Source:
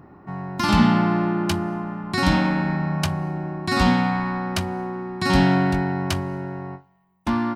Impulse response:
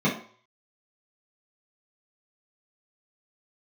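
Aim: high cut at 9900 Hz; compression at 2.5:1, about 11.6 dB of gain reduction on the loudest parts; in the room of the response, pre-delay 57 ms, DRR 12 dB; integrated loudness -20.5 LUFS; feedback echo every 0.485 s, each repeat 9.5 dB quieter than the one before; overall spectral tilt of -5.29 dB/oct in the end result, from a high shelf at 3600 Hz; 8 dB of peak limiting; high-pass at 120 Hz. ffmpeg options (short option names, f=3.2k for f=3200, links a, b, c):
-filter_complex "[0:a]highpass=120,lowpass=9.9k,highshelf=f=3.6k:g=6,acompressor=threshold=-31dB:ratio=2.5,alimiter=limit=-22.5dB:level=0:latency=1,aecho=1:1:485|970|1455|1940:0.335|0.111|0.0365|0.012,asplit=2[a][b];[1:a]atrim=start_sample=2205,adelay=57[c];[b][c]afir=irnorm=-1:irlink=0,volume=-26dB[d];[a][d]amix=inputs=2:normalize=0,volume=10.5dB"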